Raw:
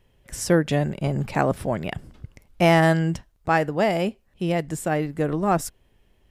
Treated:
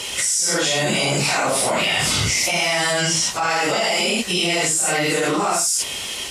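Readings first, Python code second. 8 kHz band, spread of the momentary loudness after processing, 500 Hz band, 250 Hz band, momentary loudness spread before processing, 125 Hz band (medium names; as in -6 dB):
+19.0 dB, 2 LU, +0.5 dB, -2.0 dB, 13 LU, -4.0 dB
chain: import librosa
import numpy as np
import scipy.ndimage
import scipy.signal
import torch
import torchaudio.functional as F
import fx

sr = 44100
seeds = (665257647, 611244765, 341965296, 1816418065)

p1 = fx.phase_scramble(x, sr, seeds[0], window_ms=200)
p2 = fx.bass_treble(p1, sr, bass_db=2, treble_db=5)
p3 = fx.notch(p2, sr, hz=1700.0, q=6.6)
p4 = 10.0 ** (-18.5 / 20.0) * np.tanh(p3 / 10.0 ** (-18.5 / 20.0))
p5 = p3 + (p4 * 10.0 ** (-9.5 / 20.0))
p6 = fx.weighting(p5, sr, curve='ITU-R 468')
p7 = fx.env_flatten(p6, sr, amount_pct=100)
y = p7 * 10.0 ** (-7.0 / 20.0)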